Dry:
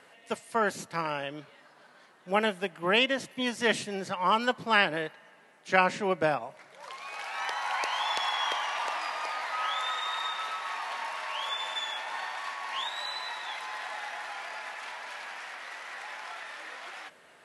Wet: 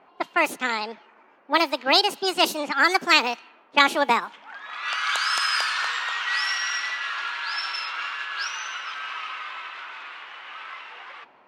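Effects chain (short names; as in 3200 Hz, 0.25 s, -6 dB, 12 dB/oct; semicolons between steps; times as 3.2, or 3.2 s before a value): wide varispeed 1.52×; low-pass opened by the level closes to 1000 Hz, open at -25 dBFS; gain +6.5 dB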